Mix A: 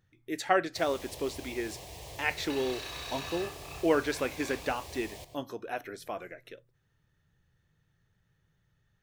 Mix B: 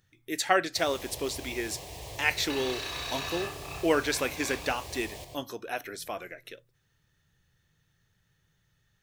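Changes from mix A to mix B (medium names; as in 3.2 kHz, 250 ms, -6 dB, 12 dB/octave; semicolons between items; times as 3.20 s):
speech: add treble shelf 2.4 kHz +10.5 dB; first sound: send +8.0 dB; second sound +5.0 dB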